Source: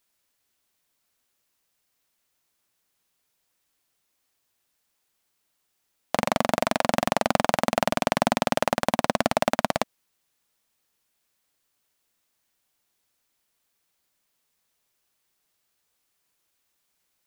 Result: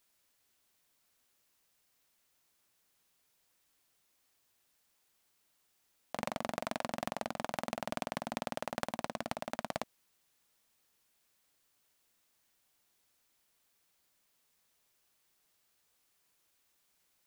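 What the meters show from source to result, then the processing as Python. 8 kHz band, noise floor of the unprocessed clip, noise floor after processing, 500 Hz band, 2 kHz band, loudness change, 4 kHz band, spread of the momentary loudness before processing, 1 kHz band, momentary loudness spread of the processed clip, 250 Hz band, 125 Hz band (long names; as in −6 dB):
−14.0 dB, −75 dBFS, −76 dBFS, −15.0 dB, −14.5 dB, −15.0 dB, −14.5 dB, 4 LU, −15.0 dB, 3 LU, −15.0 dB, −14.5 dB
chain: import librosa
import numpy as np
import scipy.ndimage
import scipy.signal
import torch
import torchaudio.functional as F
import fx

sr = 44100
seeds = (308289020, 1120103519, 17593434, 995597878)

y = fx.over_compress(x, sr, threshold_db=-30.0, ratio=-1.0)
y = y * 10.0 ** (-7.5 / 20.0)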